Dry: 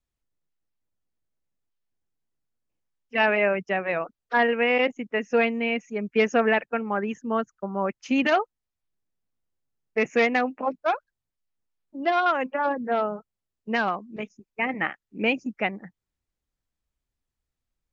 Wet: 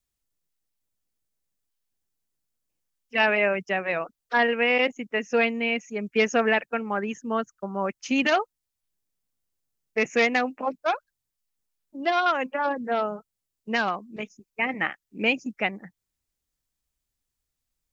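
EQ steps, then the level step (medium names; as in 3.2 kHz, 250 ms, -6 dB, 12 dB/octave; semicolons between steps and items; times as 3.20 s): treble shelf 3.8 kHz +11.5 dB; -1.5 dB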